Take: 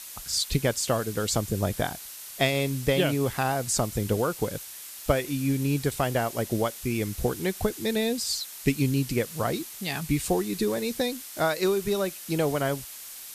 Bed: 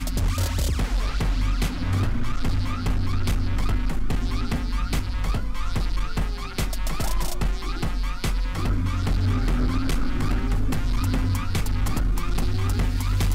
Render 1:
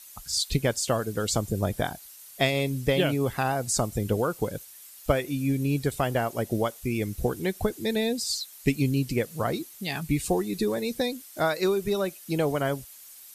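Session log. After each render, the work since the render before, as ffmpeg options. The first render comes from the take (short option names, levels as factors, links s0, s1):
-af "afftdn=nr=10:nf=-42"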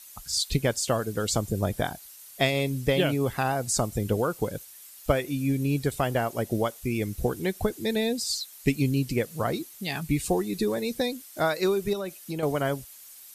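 -filter_complex "[0:a]asettb=1/sr,asplit=3[s0][s1][s2];[s0]atrim=end=11.934[s3];[s1]atrim=start=11.93:end=12.43,asetpts=PTS-STARTPTS,afade=t=in:d=0.004:c=qsin,afade=t=out:st=0.496:d=0.004:c=qsin,acompressor=threshold=0.0316:ratio=2.5:attack=3.2:release=140:knee=1:detection=peak[s4];[s2]atrim=start=12.426[s5];[s3][s4]acrossfade=d=0.004:c1=hsin:c2=qsin[s6];[s6][s5]acrossfade=d=0.004:c1=qsin:c2=hsin"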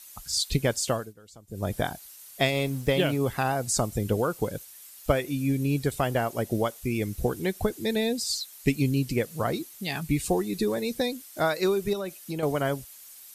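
-filter_complex "[0:a]asettb=1/sr,asplit=3[s0][s1][s2];[s0]atrim=end=2.424[s3];[s1]atrim=start=2.42:end=3.18,asetpts=PTS-STARTPTS,afade=t=in:d=0.004:c=qsin,afade=t=out:st=0.756:d=0.004:c=qsin,aeval=exprs='sgn(val(0))*max(abs(val(0))-0.00447,0)':c=same[s4];[s2]atrim=start=3.176[s5];[s3][s4]acrossfade=d=0.004:c1=hsin:c2=qsin[s6];[s6][s5]acrossfade=d=0.004:c1=qsin:c2=hsin,asplit=3[s7][s8][s9];[s7]atrim=end=1.14,asetpts=PTS-STARTPTS,afade=t=out:st=0.88:d=0.26:silence=0.0630957[s10];[s8]atrim=start=1.14:end=1.47,asetpts=PTS-STARTPTS,volume=0.0631[s11];[s9]atrim=start=1.47,asetpts=PTS-STARTPTS,afade=t=in:d=0.26:silence=0.0630957[s12];[s10][s11][s12]concat=n=3:v=0:a=1"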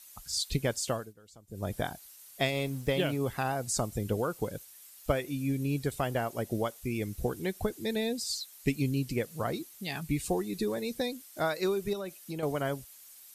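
-af "volume=0.562"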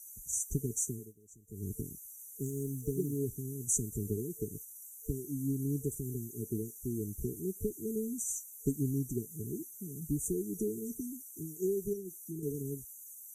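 -af "tiltshelf=f=1400:g=-3,afftfilt=real='re*(1-between(b*sr/4096,450,5800))':imag='im*(1-between(b*sr/4096,450,5800))':win_size=4096:overlap=0.75"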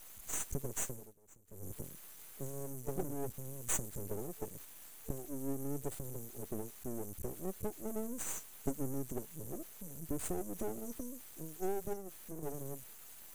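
-af "aeval=exprs='max(val(0),0)':c=same"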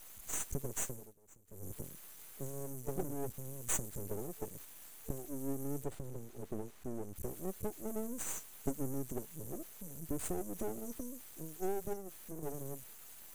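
-filter_complex "[0:a]asettb=1/sr,asplit=3[s0][s1][s2];[s0]atrim=end=5.844[s3];[s1]atrim=start=5.84:end=7.16,asetpts=PTS-STARTPTS,afade=t=in:d=0.004:c=qsin,afade=t=out:st=1.316:d=0.004:c=qsin,lowpass=f=3200:p=1[s4];[s2]atrim=start=7.156[s5];[s3][s4]acrossfade=d=0.004:c1=hsin:c2=qsin[s6];[s6][s5]acrossfade=d=0.004:c1=qsin:c2=hsin"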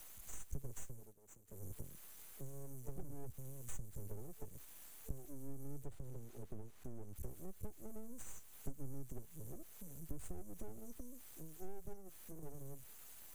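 -filter_complex "[0:a]acrossover=split=120[s0][s1];[s1]acompressor=threshold=0.002:ratio=4[s2];[s0][s2]amix=inputs=2:normalize=0"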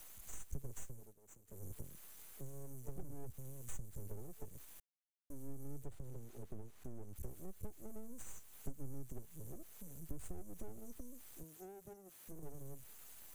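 -filter_complex "[0:a]asettb=1/sr,asplit=3[s0][s1][s2];[s0]atrim=end=11.434[s3];[s1]atrim=start=11.43:end=12.28,asetpts=PTS-STARTPTS,afade=t=in:d=0.004:c=qsin,afade=t=out:st=0.846:d=0.004:c=qsin,highpass=f=180:p=1[s4];[s2]atrim=start=12.276[s5];[s3][s4]acrossfade=d=0.004:c1=hsin:c2=qsin[s6];[s6][s5]acrossfade=d=0.004:c1=qsin:c2=hsin,asplit=3[s7][s8][s9];[s7]atrim=end=4.8,asetpts=PTS-STARTPTS,afade=t=out:st=4.796:d=0.004:c=hsin[s10];[s8]atrim=start=4.8:end=5.3,asetpts=PTS-STARTPTS,volume=0[s11];[s9]atrim=start=5.3,asetpts=PTS-STARTPTS,afade=t=in:d=0.004:c=hsin[s12];[s10][s11][s12]concat=n=3:v=0:a=1"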